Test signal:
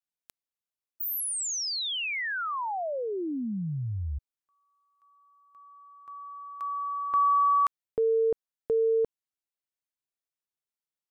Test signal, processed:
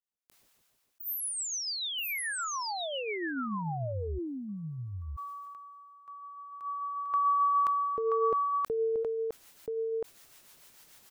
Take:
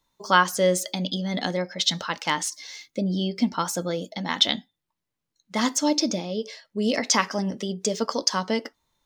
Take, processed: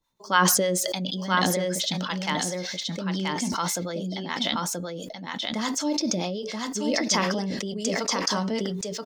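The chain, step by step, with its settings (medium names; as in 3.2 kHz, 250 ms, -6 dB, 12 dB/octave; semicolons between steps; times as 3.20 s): harmonic tremolo 6.8 Hz, depth 70%, crossover 580 Hz; delay 979 ms -3.5 dB; decay stretcher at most 21 dB/s; trim -2 dB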